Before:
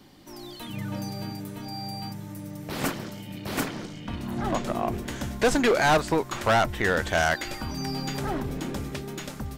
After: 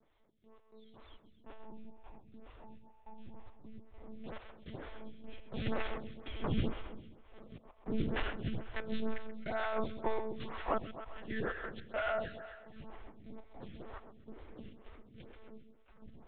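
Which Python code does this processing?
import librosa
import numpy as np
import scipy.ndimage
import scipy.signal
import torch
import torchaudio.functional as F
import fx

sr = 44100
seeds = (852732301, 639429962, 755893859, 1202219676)

p1 = fx.doppler_pass(x, sr, speed_mps=24, closest_m=1.6, pass_at_s=4.22)
p2 = fx.peak_eq(p1, sr, hz=84.0, db=-6.5, octaves=0.34)
p3 = fx.over_compress(p2, sr, threshold_db=-49.0, ratio=-0.5)
p4 = fx.stretch_grains(p3, sr, factor=1.7, grain_ms=51.0)
p5 = fx.step_gate(p4, sr, bpm=103, pattern='xx.x.xxx..x', floor_db=-24.0, edge_ms=4.5)
p6 = fx.lpc_monotone(p5, sr, seeds[0], pitch_hz=220.0, order=10)
p7 = p6 + fx.echo_feedback(p6, sr, ms=132, feedback_pct=51, wet_db=-9, dry=0)
p8 = fx.stagger_phaser(p7, sr, hz=2.1)
y = p8 * 10.0 ** (15.5 / 20.0)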